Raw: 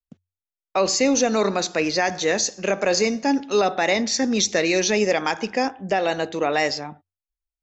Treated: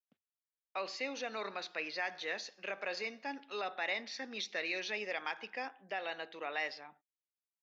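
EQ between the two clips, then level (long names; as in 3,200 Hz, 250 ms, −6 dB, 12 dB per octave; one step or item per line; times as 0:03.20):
band-pass filter 110–4,200 Hz
high-frequency loss of the air 340 metres
first difference
+2.5 dB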